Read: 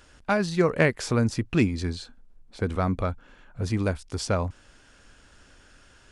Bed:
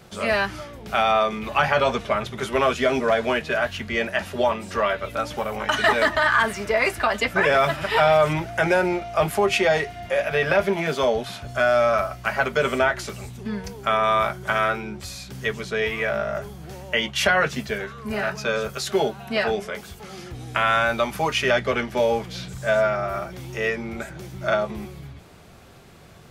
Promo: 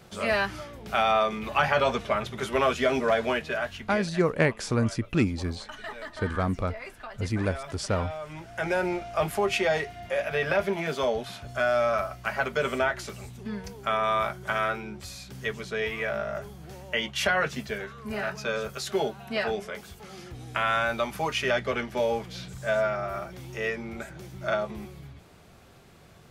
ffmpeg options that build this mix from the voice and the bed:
ffmpeg -i stem1.wav -i stem2.wav -filter_complex "[0:a]adelay=3600,volume=-2dB[link_01];[1:a]volume=11dB,afade=type=out:start_time=3.22:duration=1:silence=0.149624,afade=type=in:start_time=8.28:duration=0.59:silence=0.188365[link_02];[link_01][link_02]amix=inputs=2:normalize=0" out.wav

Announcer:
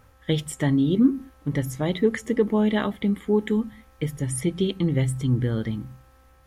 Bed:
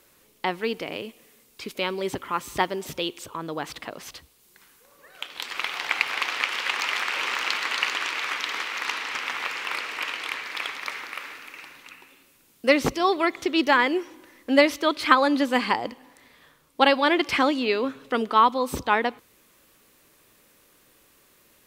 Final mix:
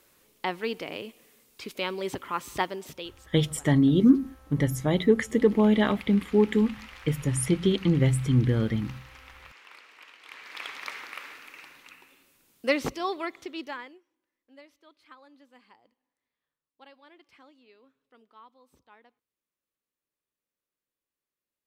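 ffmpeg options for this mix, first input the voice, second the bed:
ffmpeg -i stem1.wav -i stem2.wav -filter_complex "[0:a]adelay=3050,volume=0.5dB[link_01];[1:a]volume=12.5dB,afade=type=out:start_time=2.56:duration=0.74:silence=0.133352,afade=type=in:start_time=10.21:duration=0.59:silence=0.158489,afade=type=out:start_time=12.57:duration=1.43:silence=0.0334965[link_02];[link_01][link_02]amix=inputs=2:normalize=0" out.wav

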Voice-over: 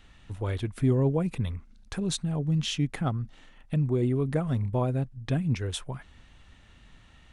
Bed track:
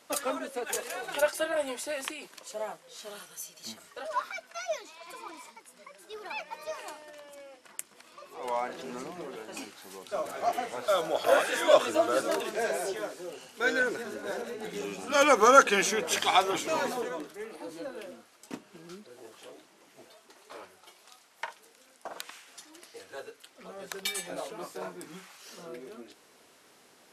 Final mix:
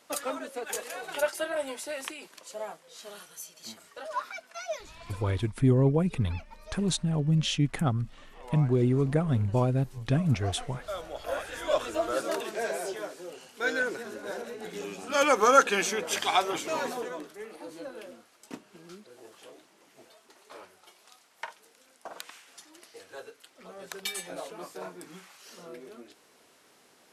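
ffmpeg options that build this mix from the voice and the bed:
ffmpeg -i stem1.wav -i stem2.wav -filter_complex "[0:a]adelay=4800,volume=1.5dB[link_01];[1:a]volume=7dB,afade=type=out:start_time=5.13:duration=0.33:silence=0.375837,afade=type=in:start_time=11.49:duration=0.8:silence=0.375837[link_02];[link_01][link_02]amix=inputs=2:normalize=0" out.wav

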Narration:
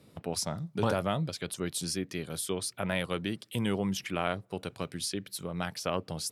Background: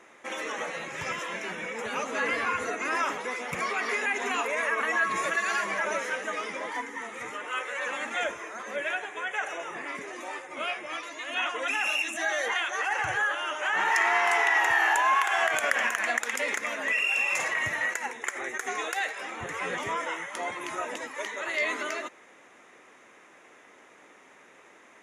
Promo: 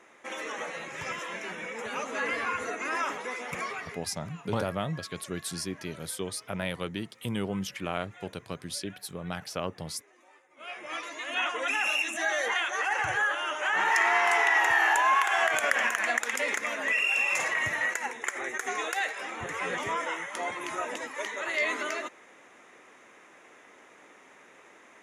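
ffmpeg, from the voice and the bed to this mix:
ffmpeg -i stem1.wav -i stem2.wav -filter_complex "[0:a]adelay=3700,volume=-1.5dB[link_01];[1:a]volume=19dB,afade=type=out:start_time=3.56:duration=0.43:silence=0.112202,afade=type=in:start_time=10.57:duration=0.41:silence=0.0841395[link_02];[link_01][link_02]amix=inputs=2:normalize=0" out.wav

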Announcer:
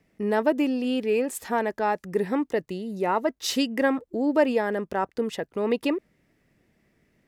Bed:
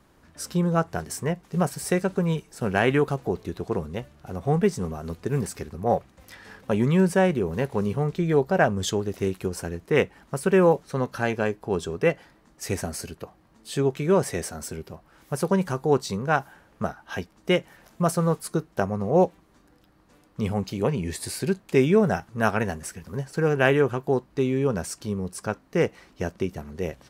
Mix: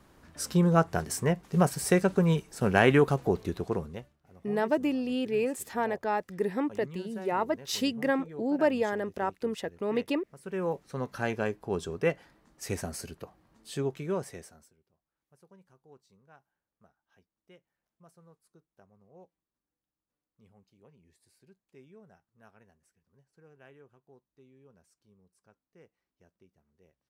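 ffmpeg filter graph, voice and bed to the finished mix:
ffmpeg -i stem1.wav -i stem2.wav -filter_complex "[0:a]adelay=4250,volume=-4.5dB[link_01];[1:a]volume=17dB,afade=type=out:start_time=3.47:duration=0.72:silence=0.0749894,afade=type=in:start_time=10.37:duration=0.89:silence=0.141254,afade=type=out:start_time=13.53:duration=1.2:silence=0.0316228[link_02];[link_01][link_02]amix=inputs=2:normalize=0" out.wav

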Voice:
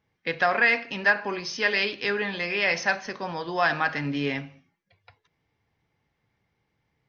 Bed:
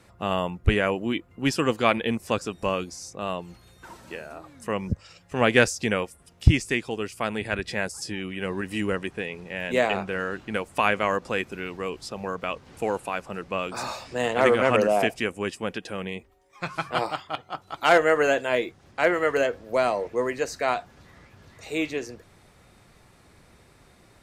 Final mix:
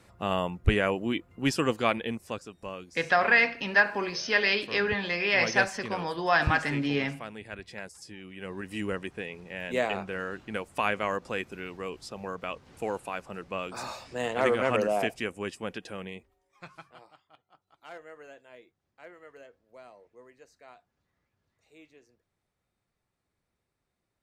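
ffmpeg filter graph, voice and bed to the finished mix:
ffmpeg -i stem1.wav -i stem2.wav -filter_complex "[0:a]adelay=2700,volume=-0.5dB[link_01];[1:a]volume=5dB,afade=type=out:start_time=1.58:duration=0.9:silence=0.298538,afade=type=in:start_time=8.22:duration=0.62:silence=0.421697,afade=type=out:start_time=15.87:duration=1.1:silence=0.0794328[link_02];[link_01][link_02]amix=inputs=2:normalize=0" out.wav

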